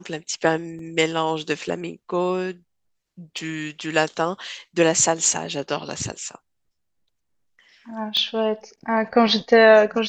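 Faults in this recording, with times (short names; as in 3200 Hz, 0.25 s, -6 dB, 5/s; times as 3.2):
0.79 gap 2.5 ms
3.38 gap 2.1 ms
8.17 pop -12 dBFS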